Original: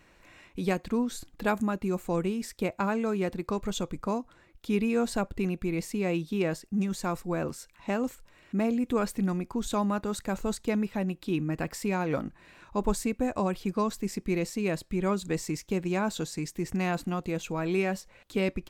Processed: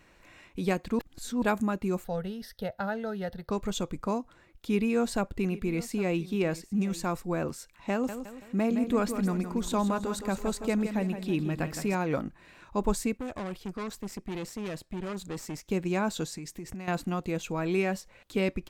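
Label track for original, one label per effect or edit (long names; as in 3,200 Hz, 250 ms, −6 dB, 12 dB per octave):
0.990000	1.420000	reverse
2.040000	3.510000	phaser with its sweep stopped centre 1,600 Hz, stages 8
4.700000	7.060000	single-tap delay 808 ms −17.5 dB
7.920000	11.950000	repeating echo 165 ms, feedback 45%, level −9 dB
13.170000	15.660000	tube saturation drive 32 dB, bias 0.75
16.350000	16.880000	downward compressor 12 to 1, threshold −35 dBFS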